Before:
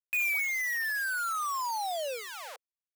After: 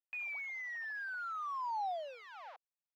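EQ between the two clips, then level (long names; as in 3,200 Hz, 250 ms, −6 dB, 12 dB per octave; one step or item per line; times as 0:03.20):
four-pole ladder high-pass 650 Hz, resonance 50%
high-frequency loss of the air 270 metres
0.0 dB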